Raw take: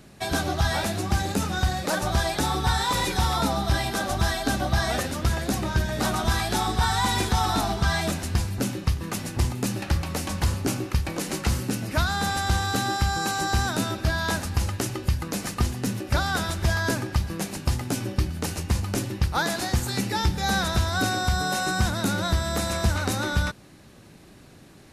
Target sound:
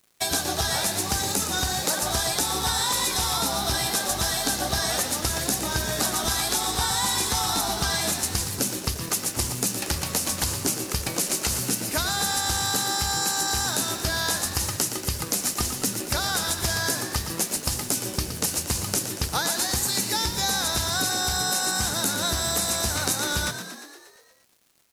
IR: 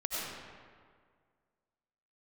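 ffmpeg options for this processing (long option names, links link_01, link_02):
-filter_complex "[0:a]bass=frequency=250:gain=-6,treble=frequency=4000:gain=13,aeval=exprs='sgn(val(0))*max(abs(val(0))-0.0075,0)':channel_layout=same,acompressor=threshold=-25dB:ratio=6,asplit=2[link_01][link_02];[link_02]asplit=8[link_03][link_04][link_05][link_06][link_07][link_08][link_09][link_10];[link_03]adelay=117,afreqshift=56,volume=-9.5dB[link_11];[link_04]adelay=234,afreqshift=112,volume=-13.4dB[link_12];[link_05]adelay=351,afreqshift=168,volume=-17.3dB[link_13];[link_06]adelay=468,afreqshift=224,volume=-21.1dB[link_14];[link_07]adelay=585,afreqshift=280,volume=-25dB[link_15];[link_08]adelay=702,afreqshift=336,volume=-28.9dB[link_16];[link_09]adelay=819,afreqshift=392,volume=-32.8dB[link_17];[link_10]adelay=936,afreqshift=448,volume=-36.6dB[link_18];[link_11][link_12][link_13][link_14][link_15][link_16][link_17][link_18]amix=inputs=8:normalize=0[link_19];[link_01][link_19]amix=inputs=2:normalize=0,volume=3dB"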